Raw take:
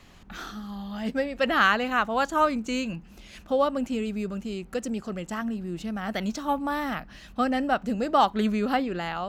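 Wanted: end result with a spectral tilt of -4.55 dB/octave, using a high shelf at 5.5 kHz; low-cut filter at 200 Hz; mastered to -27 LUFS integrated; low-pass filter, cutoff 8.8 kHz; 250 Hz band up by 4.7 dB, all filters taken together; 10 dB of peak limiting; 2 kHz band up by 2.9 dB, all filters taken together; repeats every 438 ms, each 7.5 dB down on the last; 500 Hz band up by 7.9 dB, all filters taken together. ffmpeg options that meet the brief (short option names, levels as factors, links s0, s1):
-af "highpass=200,lowpass=8800,equalizer=f=250:t=o:g=5.5,equalizer=f=500:t=o:g=8,equalizer=f=2000:t=o:g=4,highshelf=f=5500:g=-7,alimiter=limit=0.188:level=0:latency=1,aecho=1:1:438|876|1314|1752|2190:0.422|0.177|0.0744|0.0312|0.0131,volume=0.75"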